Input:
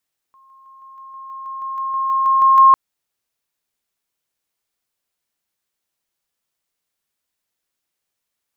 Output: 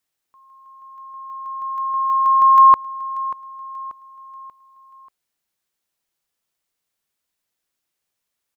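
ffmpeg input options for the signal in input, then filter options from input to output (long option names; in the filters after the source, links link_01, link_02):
-f lavfi -i "aevalsrc='pow(10,(-47.5+3*floor(t/0.16))/20)*sin(2*PI*1070*t)':duration=2.4:sample_rate=44100"
-af "aecho=1:1:586|1172|1758|2344:0.15|0.0688|0.0317|0.0146"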